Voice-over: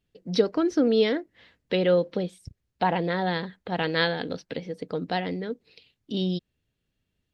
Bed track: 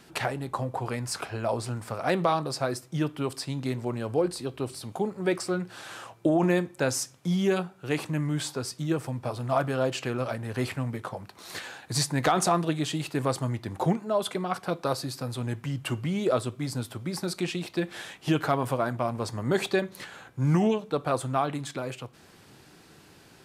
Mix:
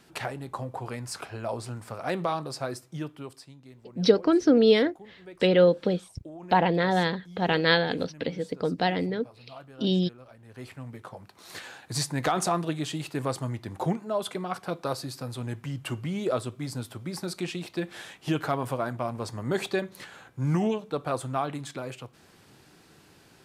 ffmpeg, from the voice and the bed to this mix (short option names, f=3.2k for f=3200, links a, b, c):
-filter_complex "[0:a]adelay=3700,volume=2.5dB[a];[1:a]volume=13.5dB,afade=t=out:st=2.72:d=0.86:silence=0.158489,afade=t=in:st=10.35:d=1.37:silence=0.133352[b];[a][b]amix=inputs=2:normalize=0"